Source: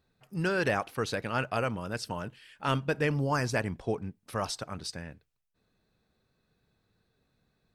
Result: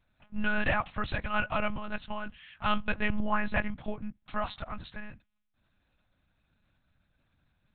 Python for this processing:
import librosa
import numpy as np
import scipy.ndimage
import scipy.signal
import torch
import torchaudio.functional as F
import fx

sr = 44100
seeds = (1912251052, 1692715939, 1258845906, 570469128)

y = fx.lpc_monotone(x, sr, seeds[0], pitch_hz=210.0, order=8)
y = fx.peak_eq(y, sr, hz=410.0, db=-15.0, octaves=0.7)
y = y * librosa.db_to_amplitude(3.0)